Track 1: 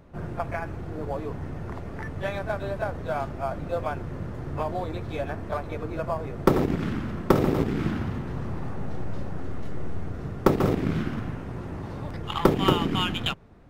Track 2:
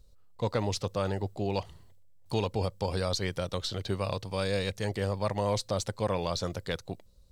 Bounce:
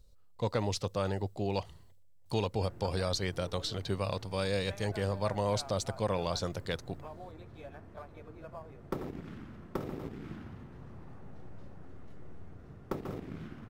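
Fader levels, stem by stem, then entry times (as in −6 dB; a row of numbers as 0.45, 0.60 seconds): −17.0, −2.0 decibels; 2.45, 0.00 seconds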